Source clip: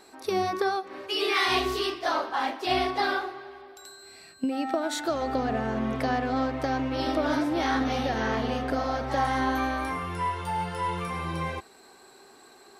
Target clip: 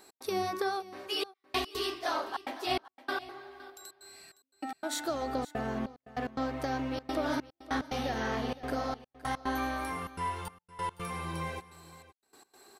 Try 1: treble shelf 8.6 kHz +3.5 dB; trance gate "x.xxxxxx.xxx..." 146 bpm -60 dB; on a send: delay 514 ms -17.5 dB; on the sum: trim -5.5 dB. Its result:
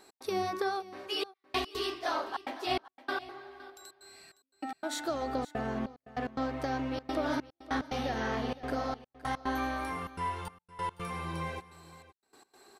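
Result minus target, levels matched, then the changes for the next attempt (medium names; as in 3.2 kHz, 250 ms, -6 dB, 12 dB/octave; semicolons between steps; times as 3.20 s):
8 kHz band -3.0 dB
change: treble shelf 8.6 kHz +11.5 dB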